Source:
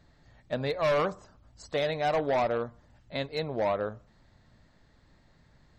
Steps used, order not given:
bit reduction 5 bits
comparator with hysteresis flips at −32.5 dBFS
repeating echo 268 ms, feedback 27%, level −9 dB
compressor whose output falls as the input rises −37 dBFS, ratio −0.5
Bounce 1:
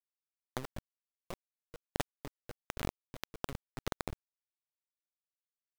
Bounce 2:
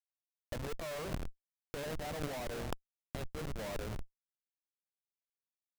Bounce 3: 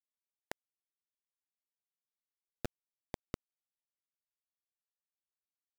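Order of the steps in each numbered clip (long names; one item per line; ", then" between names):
repeating echo, then comparator with hysteresis, then bit reduction, then compressor whose output falls as the input rises
repeating echo, then bit reduction, then comparator with hysteresis, then compressor whose output falls as the input rises
comparator with hysteresis, then compressor whose output falls as the input rises, then repeating echo, then bit reduction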